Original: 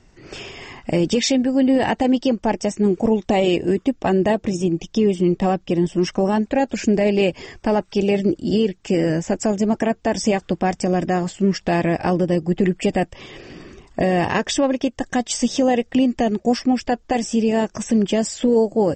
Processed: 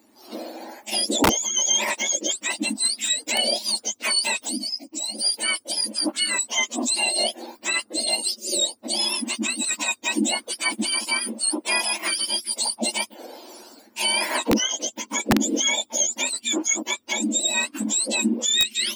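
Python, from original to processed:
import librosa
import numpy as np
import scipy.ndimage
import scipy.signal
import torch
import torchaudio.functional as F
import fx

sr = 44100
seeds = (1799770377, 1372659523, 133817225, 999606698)

y = fx.octave_mirror(x, sr, pivot_hz=1300.0)
y = fx.fixed_phaser(y, sr, hz=2400.0, stages=8, at=(4.57, 5.14), fade=0.02)
y = (np.mod(10.0 ** (10.0 / 20.0) * y + 1.0, 2.0) - 1.0) / 10.0 ** (10.0 / 20.0)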